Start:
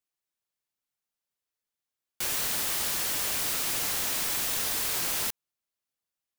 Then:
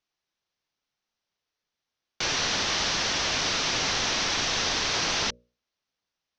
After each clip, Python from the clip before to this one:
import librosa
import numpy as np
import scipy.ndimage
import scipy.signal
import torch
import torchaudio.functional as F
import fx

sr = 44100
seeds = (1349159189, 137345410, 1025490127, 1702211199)

y = scipy.signal.sosfilt(scipy.signal.cheby1(5, 1.0, 6000.0, 'lowpass', fs=sr, output='sos'), x)
y = fx.hum_notches(y, sr, base_hz=60, count=10)
y = y * 10.0 ** (8.5 / 20.0)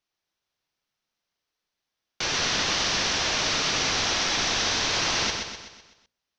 y = fx.echo_feedback(x, sr, ms=126, feedback_pct=49, wet_db=-5.0)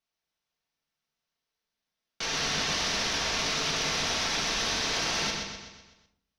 y = fx.diode_clip(x, sr, knee_db=-16.5)
y = fx.room_shoebox(y, sr, seeds[0], volume_m3=710.0, walls='furnished', distance_m=1.6)
y = y * 10.0 ** (-4.5 / 20.0)